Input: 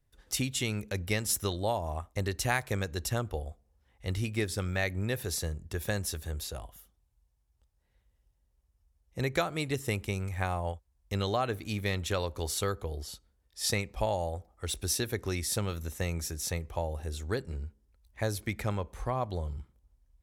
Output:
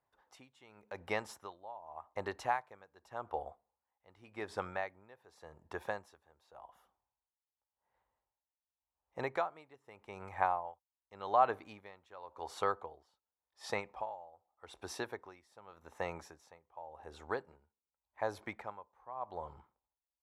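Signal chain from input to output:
0:13.79–0:14.52: downward compressor 3 to 1, threshold −32 dBFS, peak gain reduction 6 dB
resonant band-pass 910 Hz, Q 2.9
tremolo with a sine in dB 0.87 Hz, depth 22 dB
level +10 dB

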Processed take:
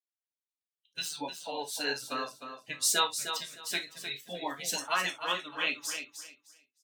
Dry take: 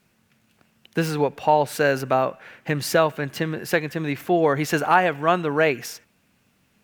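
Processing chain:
spectral dynamics exaggerated over time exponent 2
high-pass filter 490 Hz 12 dB per octave
gate on every frequency bin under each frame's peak −10 dB weak
flat-topped bell 5,700 Hz +10 dB
repeating echo 306 ms, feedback 21%, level −8.5 dB
convolution reverb, pre-delay 3 ms, DRR 2.5 dB

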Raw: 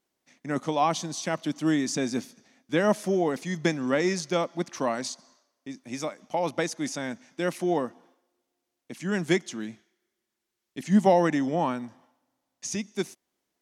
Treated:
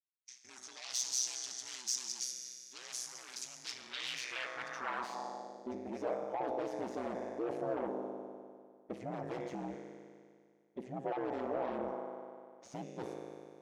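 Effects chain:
RIAA equalisation recording
noise gate −56 dBFS, range −54 dB
spectral tilt −3.5 dB per octave
reversed playback
downward compressor 6 to 1, threshold −32 dBFS, peak gain reduction 17 dB
reversed playback
phase-vocoder pitch shift with formants kept +2.5 semitones
tuned comb filter 53 Hz, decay 2 s, harmonics all, mix 80%
in parallel at −8 dB: sine wavefolder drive 16 dB, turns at −32.5 dBFS
on the sum: band-pass filter sweep 5,800 Hz → 560 Hz, 0:03.55–0:05.61
ring modulation 63 Hz
level +13.5 dB

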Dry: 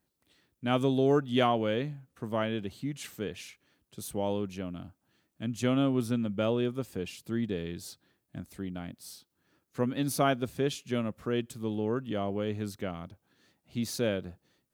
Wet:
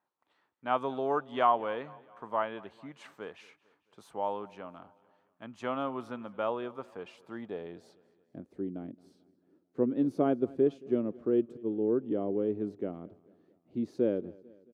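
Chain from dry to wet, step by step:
0:11.57–0:12.03: downward expander −28 dBFS
band-pass filter sweep 980 Hz → 350 Hz, 0:07.24–0:08.66
on a send: repeating echo 222 ms, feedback 53%, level −23 dB
on the sum: level +7 dB

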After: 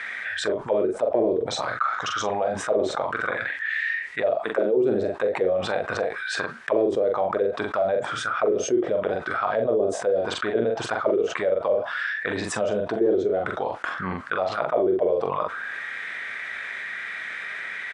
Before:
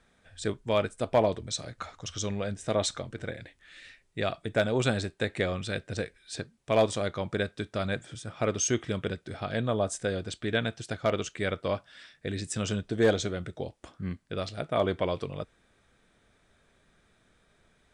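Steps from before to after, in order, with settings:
0:04.36–0:04.77: high-pass filter 230 Hz 12 dB per octave
envelope filter 370–2,000 Hz, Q 6.3, down, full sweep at −23 dBFS
double-tracking delay 43 ms −6 dB
envelope flattener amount 70%
level +8 dB

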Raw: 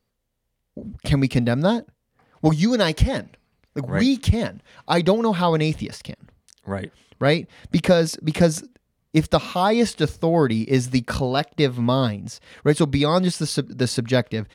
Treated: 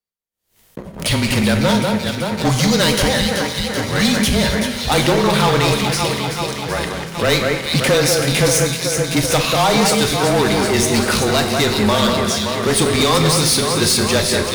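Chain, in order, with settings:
spectral tilt +2.5 dB per octave
delay that swaps between a low-pass and a high-pass 191 ms, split 2,400 Hz, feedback 81%, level −7 dB
leveller curve on the samples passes 5
frequency shifter −25 Hz
convolution reverb RT60 1.1 s, pre-delay 5 ms, DRR 5 dB
background raised ahead of every attack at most 140 dB per second
level −8.5 dB

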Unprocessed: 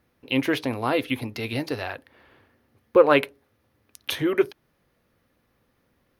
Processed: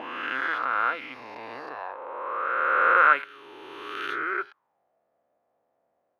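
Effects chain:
peak hold with a rise ahead of every peak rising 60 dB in 2.91 s
envelope filter 680–1,400 Hz, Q 6.6, up, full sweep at −16 dBFS
level +5 dB

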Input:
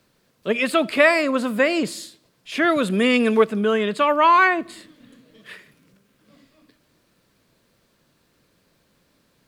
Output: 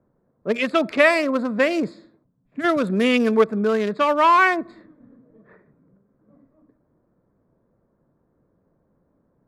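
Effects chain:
adaptive Wiener filter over 15 samples
low-pass that shuts in the quiet parts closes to 960 Hz, open at −17.5 dBFS
gain on a spectral selection 0:02.24–0:02.64, 280–6,700 Hz −13 dB

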